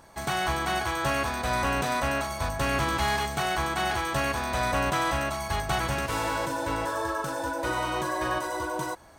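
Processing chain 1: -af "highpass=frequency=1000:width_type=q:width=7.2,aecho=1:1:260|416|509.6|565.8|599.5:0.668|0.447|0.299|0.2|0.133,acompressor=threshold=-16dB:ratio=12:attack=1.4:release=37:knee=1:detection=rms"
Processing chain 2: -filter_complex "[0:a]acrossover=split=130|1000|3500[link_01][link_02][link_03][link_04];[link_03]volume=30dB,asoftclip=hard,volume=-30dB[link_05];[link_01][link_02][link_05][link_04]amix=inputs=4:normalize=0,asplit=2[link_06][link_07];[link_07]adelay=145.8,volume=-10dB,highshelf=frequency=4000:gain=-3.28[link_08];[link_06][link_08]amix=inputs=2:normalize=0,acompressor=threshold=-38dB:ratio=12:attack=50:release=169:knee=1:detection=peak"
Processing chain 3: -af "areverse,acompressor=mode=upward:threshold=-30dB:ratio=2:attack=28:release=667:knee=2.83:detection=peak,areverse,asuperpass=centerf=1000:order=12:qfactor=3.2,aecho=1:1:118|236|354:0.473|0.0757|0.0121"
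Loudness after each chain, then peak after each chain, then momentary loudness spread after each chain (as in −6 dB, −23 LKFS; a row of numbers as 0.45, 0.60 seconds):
−20.5, −38.0, −35.0 LKFS; −11.5, −23.5, −21.5 dBFS; 2, 1, 4 LU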